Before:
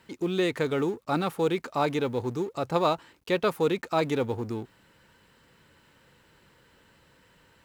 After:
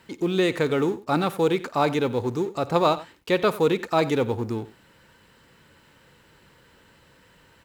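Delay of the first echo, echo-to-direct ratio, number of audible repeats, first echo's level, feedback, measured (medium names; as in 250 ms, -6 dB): 53 ms, -15.5 dB, 2, -19.5 dB, no regular repeats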